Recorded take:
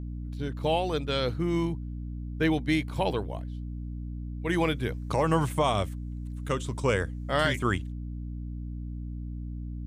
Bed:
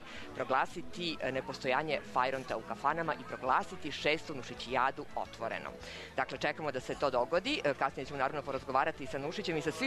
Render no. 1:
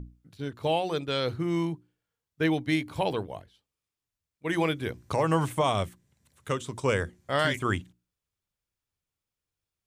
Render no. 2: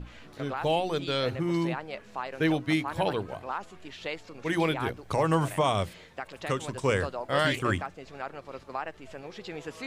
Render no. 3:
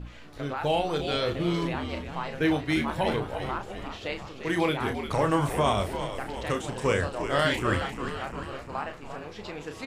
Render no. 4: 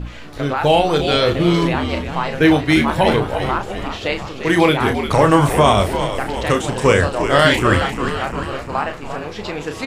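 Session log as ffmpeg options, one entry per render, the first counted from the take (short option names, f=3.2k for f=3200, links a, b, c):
-af "bandreject=f=60:t=h:w=6,bandreject=f=120:t=h:w=6,bandreject=f=180:t=h:w=6,bandreject=f=240:t=h:w=6,bandreject=f=300:t=h:w=6,bandreject=f=360:t=h:w=6"
-filter_complex "[1:a]volume=-4.5dB[a];[0:a][a]amix=inputs=2:normalize=0"
-filter_complex "[0:a]asplit=2[a][b];[b]adelay=34,volume=-7dB[c];[a][c]amix=inputs=2:normalize=0,asplit=2[d][e];[e]asplit=7[f][g][h][i][j][k][l];[f]adelay=348,afreqshift=-89,volume=-9dB[m];[g]adelay=696,afreqshift=-178,volume=-13.4dB[n];[h]adelay=1044,afreqshift=-267,volume=-17.9dB[o];[i]adelay=1392,afreqshift=-356,volume=-22.3dB[p];[j]adelay=1740,afreqshift=-445,volume=-26.7dB[q];[k]adelay=2088,afreqshift=-534,volume=-31.2dB[r];[l]adelay=2436,afreqshift=-623,volume=-35.6dB[s];[m][n][o][p][q][r][s]amix=inputs=7:normalize=0[t];[d][t]amix=inputs=2:normalize=0"
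-af "volume=12dB,alimiter=limit=-1dB:level=0:latency=1"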